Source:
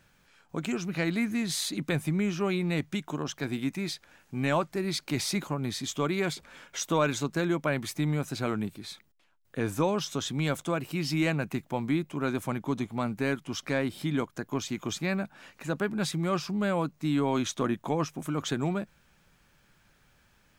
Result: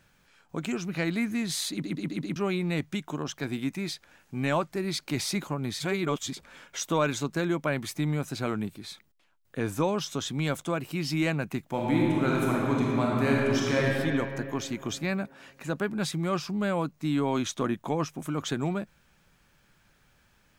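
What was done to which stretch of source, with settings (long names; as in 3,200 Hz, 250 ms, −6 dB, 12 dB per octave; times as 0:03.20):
0:01.71: stutter in place 0.13 s, 5 plays
0:05.80–0:06.34: reverse
0:11.67–0:13.84: thrown reverb, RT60 2.8 s, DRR −4 dB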